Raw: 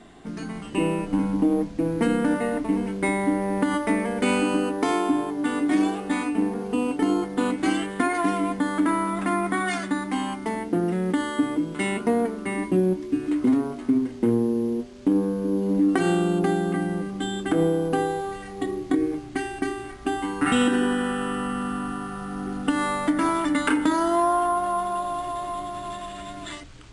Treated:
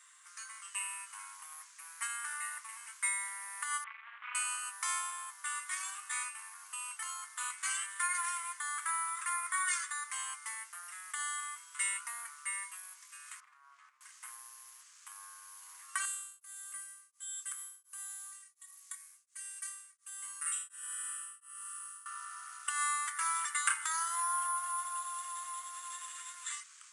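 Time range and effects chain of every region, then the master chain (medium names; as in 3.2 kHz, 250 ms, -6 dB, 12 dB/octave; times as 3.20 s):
3.84–4.35 s: CVSD coder 16 kbps + AM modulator 220 Hz, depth 100% + transformer saturation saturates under 260 Hz
13.40–14.01 s: tape spacing loss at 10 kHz 25 dB + compression 2.5:1, threshold -33 dBFS + loudspeaker Doppler distortion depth 0.12 ms
16.05–22.06 s: pre-emphasis filter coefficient 0.8 + tremolo of two beating tones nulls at 1.4 Hz
whole clip: Chebyshev high-pass 1.1 kHz, order 5; resonant high shelf 5.4 kHz +10 dB, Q 1.5; trim -5.5 dB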